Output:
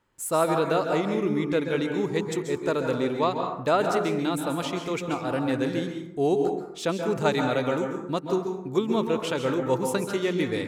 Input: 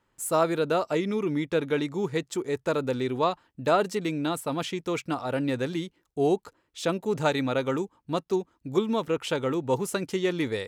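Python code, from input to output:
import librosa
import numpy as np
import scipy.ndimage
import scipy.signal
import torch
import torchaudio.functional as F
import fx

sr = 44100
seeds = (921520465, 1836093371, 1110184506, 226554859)

y = fx.rev_plate(x, sr, seeds[0], rt60_s=0.83, hf_ratio=0.45, predelay_ms=120, drr_db=3.5)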